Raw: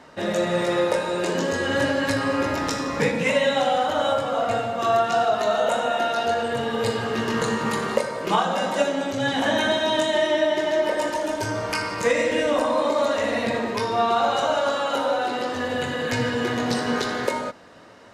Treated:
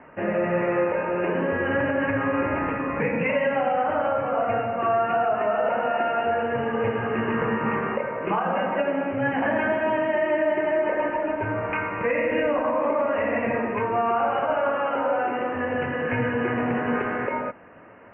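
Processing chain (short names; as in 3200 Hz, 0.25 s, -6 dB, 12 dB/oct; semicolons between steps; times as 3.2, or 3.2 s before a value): steep low-pass 2700 Hz 96 dB/oct; limiter -14.5 dBFS, peak gain reduction 7 dB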